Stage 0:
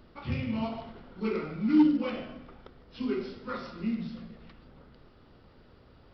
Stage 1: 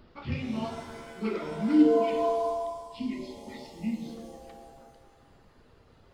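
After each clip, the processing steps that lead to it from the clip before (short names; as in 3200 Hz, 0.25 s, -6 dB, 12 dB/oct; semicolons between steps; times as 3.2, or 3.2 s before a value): reverb removal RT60 1.7 s; spectral gain 1.73–4.06, 360–1800 Hz -30 dB; shimmer reverb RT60 1.6 s, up +7 st, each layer -2 dB, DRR 6 dB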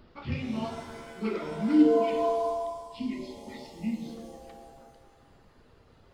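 nothing audible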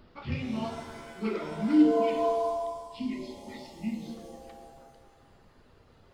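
de-hum 57.37 Hz, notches 9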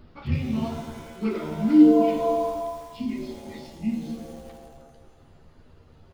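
low shelf 240 Hz +8 dB; doubler 13 ms -7.5 dB; lo-fi delay 85 ms, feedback 80%, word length 7-bit, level -14.5 dB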